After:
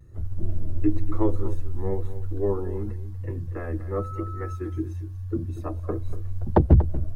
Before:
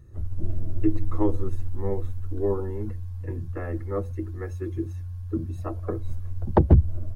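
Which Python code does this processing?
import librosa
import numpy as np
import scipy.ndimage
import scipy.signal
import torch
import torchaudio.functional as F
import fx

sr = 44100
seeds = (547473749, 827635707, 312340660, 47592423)

p1 = fx.vibrato(x, sr, rate_hz=1.0, depth_cents=61.0)
p2 = fx.dmg_tone(p1, sr, hz=1300.0, level_db=-37.0, at=(3.94, 4.55), fade=0.02)
y = p2 + fx.echo_single(p2, sr, ms=238, db=-14.0, dry=0)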